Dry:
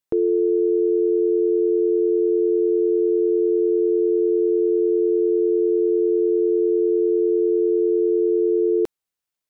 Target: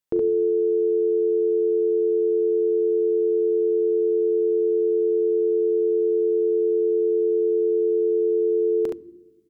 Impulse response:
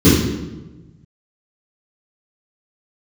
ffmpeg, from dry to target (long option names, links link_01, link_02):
-filter_complex "[0:a]aecho=1:1:40|70:0.224|0.668,asplit=2[link_01][link_02];[1:a]atrim=start_sample=2205,asetrate=41895,aresample=44100[link_03];[link_02][link_03]afir=irnorm=-1:irlink=0,volume=-49dB[link_04];[link_01][link_04]amix=inputs=2:normalize=0,volume=-2dB"